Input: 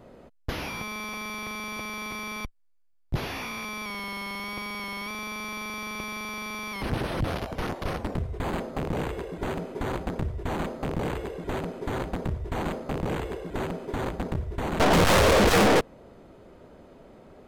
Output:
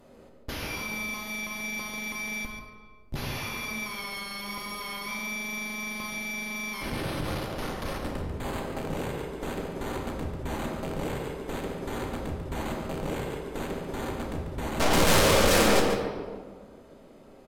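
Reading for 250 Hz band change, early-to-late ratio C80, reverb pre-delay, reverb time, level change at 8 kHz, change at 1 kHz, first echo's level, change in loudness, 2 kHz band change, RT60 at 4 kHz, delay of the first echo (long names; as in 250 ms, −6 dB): −2.0 dB, 3.5 dB, 3 ms, 1.8 s, +3.5 dB, −2.5 dB, −8.0 dB, −1.5 dB, 0.0 dB, 1.0 s, 142 ms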